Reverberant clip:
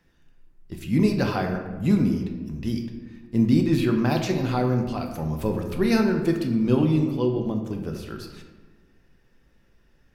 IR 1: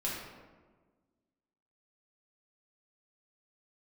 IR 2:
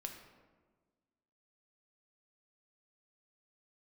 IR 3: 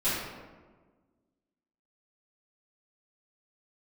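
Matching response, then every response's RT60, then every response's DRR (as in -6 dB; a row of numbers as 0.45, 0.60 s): 2; 1.4, 1.4, 1.4 s; -6.0, 3.0, -15.0 dB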